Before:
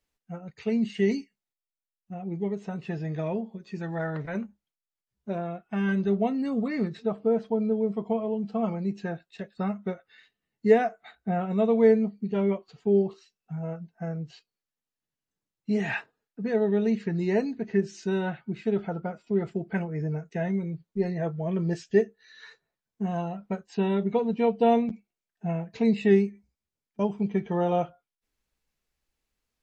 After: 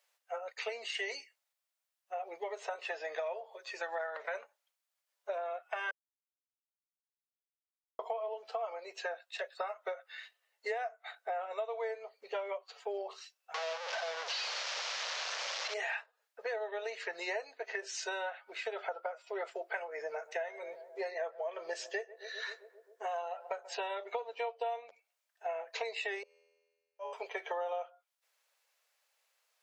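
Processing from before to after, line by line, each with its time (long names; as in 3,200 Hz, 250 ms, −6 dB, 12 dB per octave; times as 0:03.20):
0:05.91–0:07.99: silence
0:13.54–0:15.74: linear delta modulator 32 kbit/s, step −30.5 dBFS
0:19.86–0:23.99: feedback echo with a low-pass in the loop 132 ms, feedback 80%, low-pass 1,200 Hz, level −20 dB
0:26.23–0:27.13: tuned comb filter 83 Hz, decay 1.6 s, mix 100%
whole clip: elliptic high-pass filter 540 Hz, stop band 60 dB; downward compressor 10 to 1, threshold −43 dBFS; level +8.5 dB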